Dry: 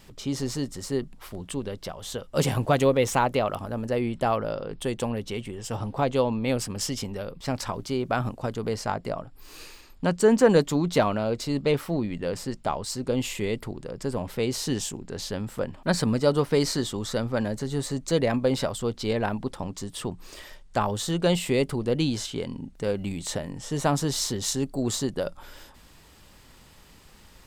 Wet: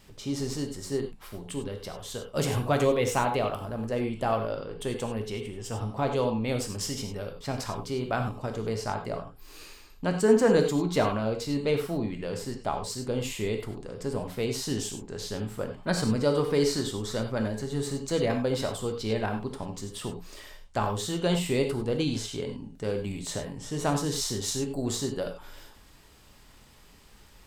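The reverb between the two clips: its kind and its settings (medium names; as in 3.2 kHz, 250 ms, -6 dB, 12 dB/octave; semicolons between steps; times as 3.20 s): gated-style reverb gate 120 ms flat, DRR 4 dB; trim -4 dB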